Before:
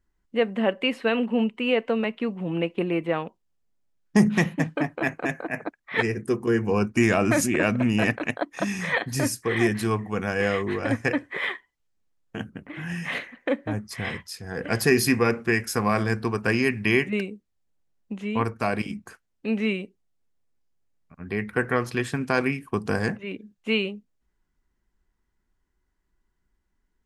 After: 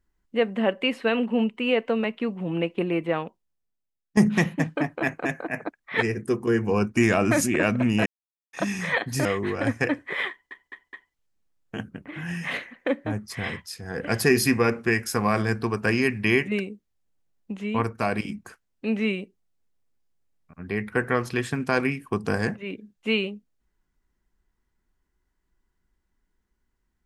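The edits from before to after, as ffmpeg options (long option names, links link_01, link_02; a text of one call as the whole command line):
ffmpeg -i in.wav -filter_complex "[0:a]asplit=8[link_01][link_02][link_03][link_04][link_05][link_06][link_07][link_08];[link_01]atrim=end=4.17,asetpts=PTS-STARTPTS,afade=type=out:start_time=3.22:duration=0.95:curve=qua:silence=0.158489[link_09];[link_02]atrim=start=4.17:end=8.06,asetpts=PTS-STARTPTS,afade=type=in:duration=0.004:curve=hsin:silence=0.158489,afade=type=out:start_time=3.886:duration=0.004:curve=hsin[link_10];[link_03]atrim=start=8.06:end=8.53,asetpts=PTS-STARTPTS,volume=0[link_11];[link_04]atrim=start=8.53:end=9.252,asetpts=PTS-STARTPTS,afade=type=in:duration=0.004:curve=hsin[link_12];[link_05]atrim=start=10.488:end=11.752[link_13];[link_06]atrim=start=11.538:end=11.752[link_14];[link_07]atrim=start=11.538:end=11.752[link_15];[link_08]atrim=start=11.538[link_16];[link_09][link_10][link_11][link_12]concat=n=4:v=0:a=1[link_17];[link_17][link_13]acrossfade=duration=0.004:curve1=hsin:curve2=hsin[link_18];[link_18][link_14]acrossfade=duration=0.004:curve1=hsin:curve2=hsin[link_19];[link_19][link_15]acrossfade=duration=0.004:curve1=hsin:curve2=hsin[link_20];[link_20][link_16]acrossfade=duration=0.004:curve1=hsin:curve2=hsin" out.wav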